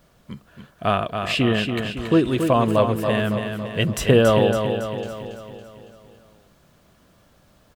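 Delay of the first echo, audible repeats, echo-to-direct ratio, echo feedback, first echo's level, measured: 279 ms, 6, -5.0 dB, 54%, -6.5 dB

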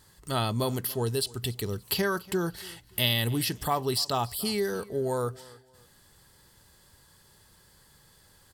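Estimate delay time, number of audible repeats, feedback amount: 287 ms, 2, 29%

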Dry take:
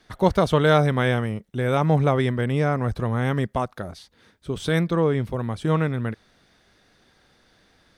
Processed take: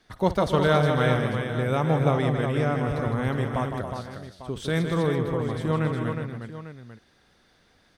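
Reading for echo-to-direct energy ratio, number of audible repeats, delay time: -2.5 dB, 6, 55 ms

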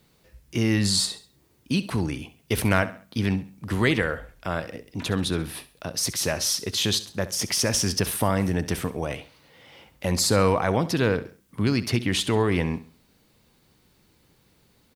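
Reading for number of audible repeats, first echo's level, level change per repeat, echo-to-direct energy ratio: 3, -15.5 dB, -9.0 dB, -15.0 dB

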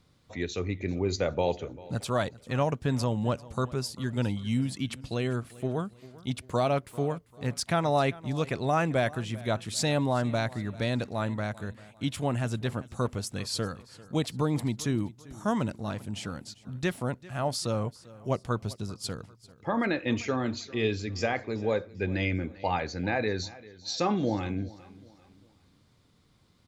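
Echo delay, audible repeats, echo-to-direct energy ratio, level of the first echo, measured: 394 ms, 2, -19.5 dB, -20.0 dB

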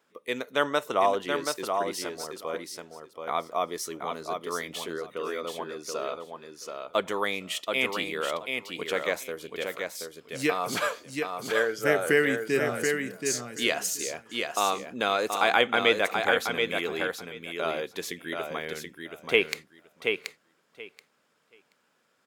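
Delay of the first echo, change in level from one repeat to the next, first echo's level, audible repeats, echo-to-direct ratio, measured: 729 ms, -16.0 dB, -5.0 dB, 2, -5.0 dB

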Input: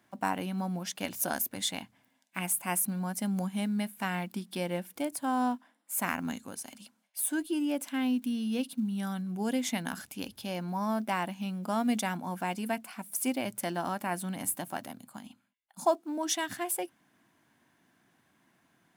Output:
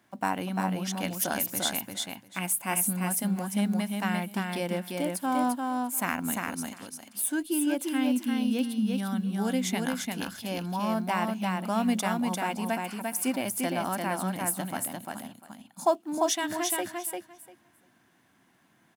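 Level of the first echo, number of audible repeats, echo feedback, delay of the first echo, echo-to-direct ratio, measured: -3.5 dB, 2, 15%, 347 ms, -3.5 dB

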